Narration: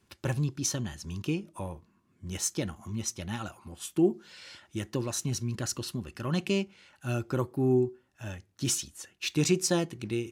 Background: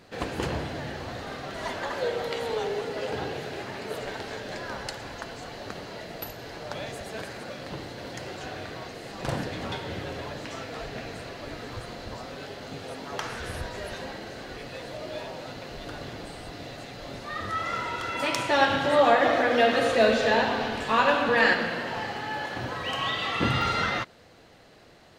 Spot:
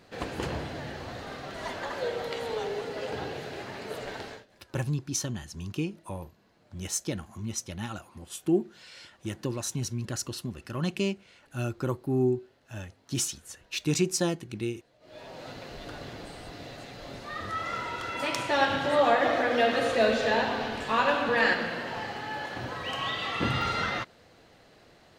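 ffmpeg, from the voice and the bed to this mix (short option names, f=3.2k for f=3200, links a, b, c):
-filter_complex "[0:a]adelay=4500,volume=-0.5dB[a];[1:a]volume=21dB,afade=t=out:st=4.24:d=0.22:silence=0.0630957,afade=t=in:st=15:d=0.48:silence=0.0630957[b];[a][b]amix=inputs=2:normalize=0"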